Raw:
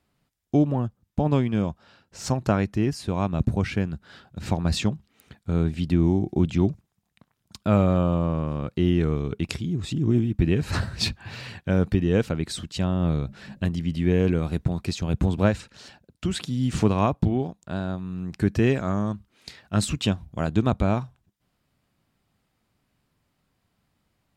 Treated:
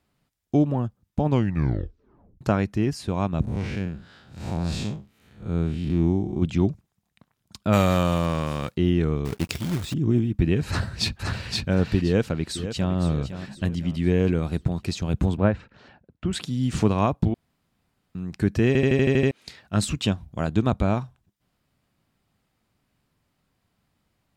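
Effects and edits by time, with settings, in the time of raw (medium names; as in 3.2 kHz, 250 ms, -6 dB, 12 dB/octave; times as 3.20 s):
1.28 s: tape stop 1.13 s
3.42–6.42 s: spectral blur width 144 ms
7.72–8.74 s: formants flattened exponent 0.6
9.25–9.94 s: companded quantiser 4-bit
10.67–11.49 s: echo throw 520 ms, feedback 20%, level -2.5 dB
12.04–12.94 s: echo throw 510 ms, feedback 45%, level -11 dB
15.37–16.33 s: low-pass 2 kHz
17.34–18.15 s: room tone
18.67 s: stutter in place 0.08 s, 8 plays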